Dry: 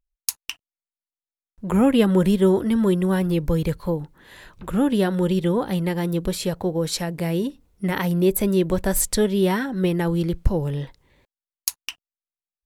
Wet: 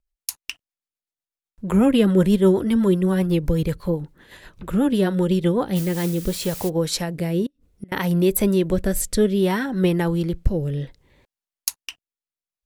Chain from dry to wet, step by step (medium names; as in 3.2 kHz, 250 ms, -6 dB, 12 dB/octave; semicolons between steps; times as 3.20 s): 5.75–6.68 s: added noise blue -35 dBFS; 7.46–7.92 s: inverted gate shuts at -22 dBFS, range -29 dB; rotary cabinet horn 8 Hz, later 0.65 Hz, at 5.40 s; trim +2.5 dB